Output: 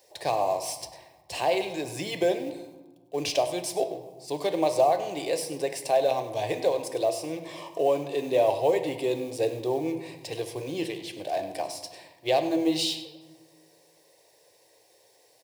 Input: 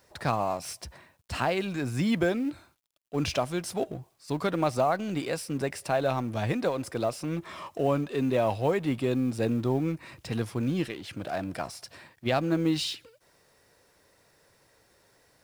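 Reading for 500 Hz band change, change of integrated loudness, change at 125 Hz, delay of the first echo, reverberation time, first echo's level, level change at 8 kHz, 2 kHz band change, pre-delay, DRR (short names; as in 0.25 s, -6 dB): +4.0 dB, +1.5 dB, -10.0 dB, 0.1 s, 1.4 s, -15.0 dB, +4.5 dB, -2.0 dB, 3 ms, 7.0 dB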